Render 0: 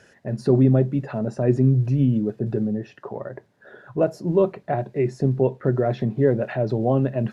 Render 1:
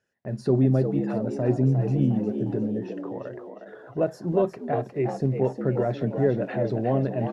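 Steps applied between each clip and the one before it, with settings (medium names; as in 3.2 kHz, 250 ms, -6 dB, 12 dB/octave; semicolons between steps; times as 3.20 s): gate -48 dBFS, range -21 dB; frequency-shifting echo 357 ms, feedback 45%, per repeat +74 Hz, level -8 dB; trim -4 dB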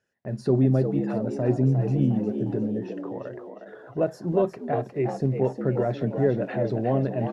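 no audible change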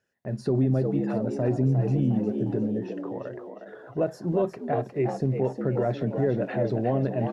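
peak limiter -15 dBFS, peak gain reduction 5 dB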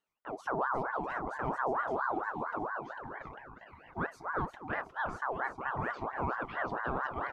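ring modulator with a swept carrier 920 Hz, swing 45%, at 4.4 Hz; trim -7 dB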